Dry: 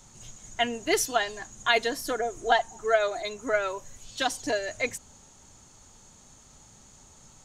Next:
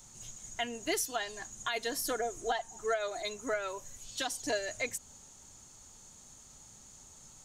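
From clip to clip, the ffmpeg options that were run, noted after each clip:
-af "highshelf=f=5.9k:g=10,alimiter=limit=-17dB:level=0:latency=1:release=265,volume=-5dB"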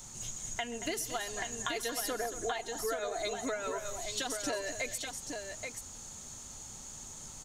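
-filter_complex "[0:a]acompressor=threshold=-40dB:ratio=6,asplit=2[a][b];[b]aecho=0:1:130|228|831:0.1|0.266|0.531[c];[a][c]amix=inputs=2:normalize=0,volume=6.5dB"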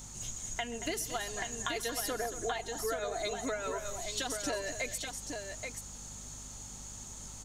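-af "aeval=exprs='val(0)+0.00282*(sin(2*PI*50*n/s)+sin(2*PI*2*50*n/s)/2+sin(2*PI*3*50*n/s)/3+sin(2*PI*4*50*n/s)/4+sin(2*PI*5*50*n/s)/5)':c=same"

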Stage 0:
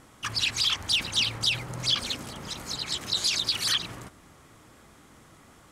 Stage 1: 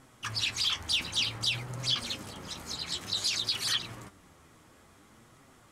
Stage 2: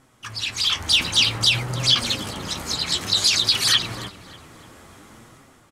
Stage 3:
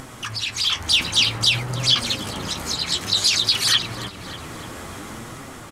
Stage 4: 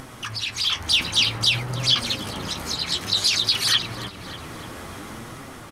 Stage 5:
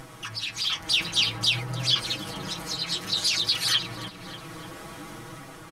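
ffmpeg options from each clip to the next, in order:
-af "flanger=delay=7.3:depth=5.5:regen=52:speed=0.55:shape=triangular"
-filter_complex "[0:a]dynaudnorm=f=190:g=7:m=12dB,asplit=2[a][b];[b]adelay=295,lowpass=f=3.5k:p=1,volume=-17dB,asplit=2[c][d];[d]adelay=295,lowpass=f=3.5k:p=1,volume=0.49,asplit=2[e][f];[f]adelay=295,lowpass=f=3.5k:p=1,volume=0.49,asplit=2[g][h];[h]adelay=295,lowpass=f=3.5k:p=1,volume=0.49[i];[a][c][e][g][i]amix=inputs=5:normalize=0"
-af "acompressor=mode=upward:threshold=-23dB:ratio=2.5"
-af "equalizer=f=7.4k:t=o:w=0.32:g=-5.5,volume=-1.5dB"
-af "aecho=1:1:6.2:0.91,volume=-6.5dB"

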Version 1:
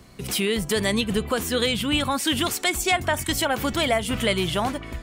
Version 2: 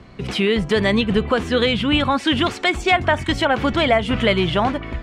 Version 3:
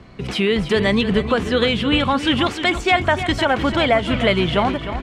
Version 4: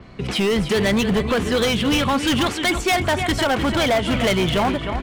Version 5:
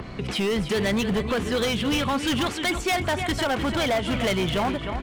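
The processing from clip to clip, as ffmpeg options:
-af "lowpass=3.1k,volume=6dB"
-af "aecho=1:1:305|610|915:0.282|0.0789|0.0221"
-af "asoftclip=type=hard:threshold=-16dB,adynamicequalizer=threshold=0.00891:dfrequency=7100:dqfactor=0.7:tfrequency=7100:tqfactor=0.7:attack=5:release=100:ratio=0.375:range=3.5:mode=boostabove:tftype=highshelf,volume=1dB"
-af "acompressor=mode=upward:threshold=-21dB:ratio=2.5,volume=-5dB"

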